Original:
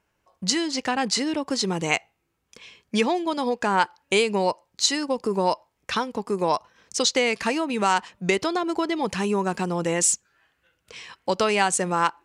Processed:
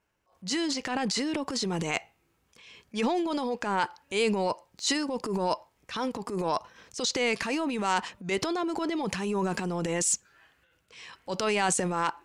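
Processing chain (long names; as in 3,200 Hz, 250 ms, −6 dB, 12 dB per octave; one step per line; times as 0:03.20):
transient designer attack −9 dB, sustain +9 dB
level −4.5 dB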